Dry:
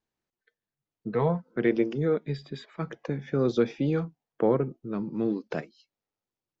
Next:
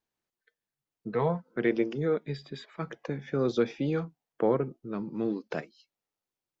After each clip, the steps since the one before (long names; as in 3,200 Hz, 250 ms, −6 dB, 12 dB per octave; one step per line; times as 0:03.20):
low-shelf EQ 390 Hz −4.5 dB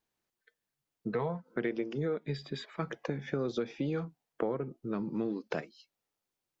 downward compressor 6 to 1, threshold −32 dBFS, peak gain reduction 12 dB
level +2.5 dB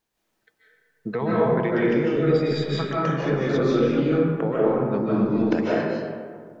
convolution reverb RT60 2.0 s, pre-delay 110 ms, DRR −7.5 dB
level +5 dB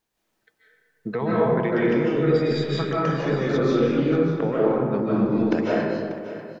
single-tap delay 590 ms −13.5 dB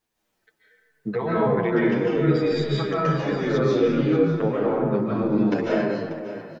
barber-pole flanger 8.6 ms −2.3 Hz
level +3 dB